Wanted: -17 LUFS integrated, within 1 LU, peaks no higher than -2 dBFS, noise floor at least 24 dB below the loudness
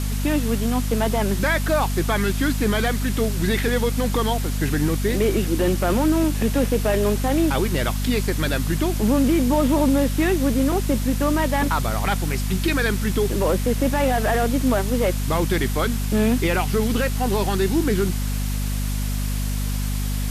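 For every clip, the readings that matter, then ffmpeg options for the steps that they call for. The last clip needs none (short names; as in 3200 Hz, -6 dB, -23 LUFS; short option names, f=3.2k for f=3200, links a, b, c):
hum 50 Hz; harmonics up to 250 Hz; hum level -21 dBFS; noise floor -24 dBFS; noise floor target -46 dBFS; loudness -21.5 LUFS; peak -8.5 dBFS; loudness target -17.0 LUFS
-> -af "bandreject=f=50:t=h:w=4,bandreject=f=100:t=h:w=4,bandreject=f=150:t=h:w=4,bandreject=f=200:t=h:w=4,bandreject=f=250:t=h:w=4"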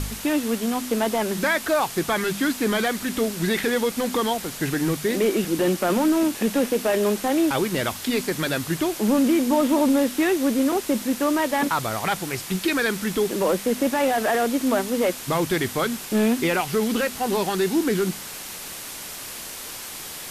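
hum none; noise floor -36 dBFS; noise floor target -47 dBFS
-> -af "afftdn=nr=11:nf=-36"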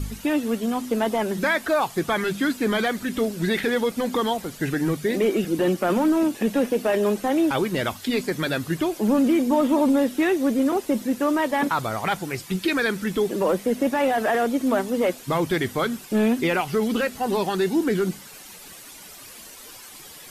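noise floor -43 dBFS; noise floor target -47 dBFS
-> -af "afftdn=nr=6:nf=-43"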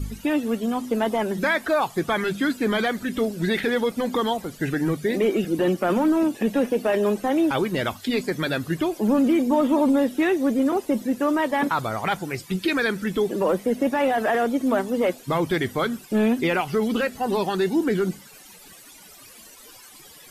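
noise floor -47 dBFS; loudness -23.0 LUFS; peak -11.0 dBFS; loudness target -17.0 LUFS
-> -af "volume=6dB"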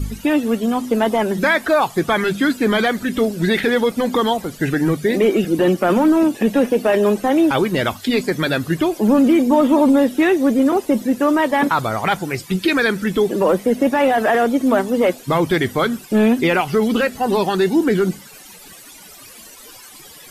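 loudness -17.0 LUFS; peak -5.0 dBFS; noise floor -41 dBFS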